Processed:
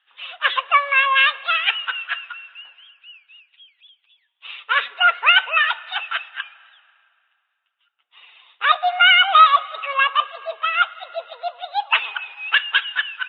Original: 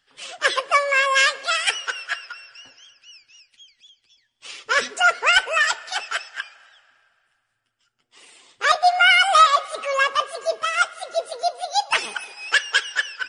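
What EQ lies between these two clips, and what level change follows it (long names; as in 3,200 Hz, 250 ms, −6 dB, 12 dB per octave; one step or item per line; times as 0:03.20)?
high-pass filter 1,100 Hz 12 dB per octave
Chebyshev low-pass with heavy ripple 3,800 Hz, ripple 6 dB
+6.5 dB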